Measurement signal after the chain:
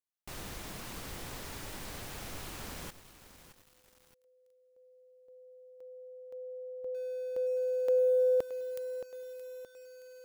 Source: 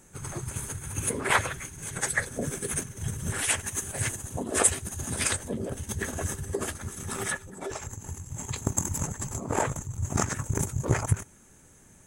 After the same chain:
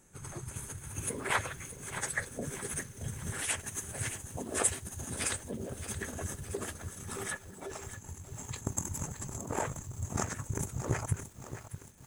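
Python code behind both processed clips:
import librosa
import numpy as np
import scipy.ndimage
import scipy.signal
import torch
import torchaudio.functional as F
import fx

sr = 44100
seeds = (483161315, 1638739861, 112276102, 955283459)

y = fx.echo_crushed(x, sr, ms=622, feedback_pct=55, bits=7, wet_db=-11.0)
y = y * librosa.db_to_amplitude(-7.0)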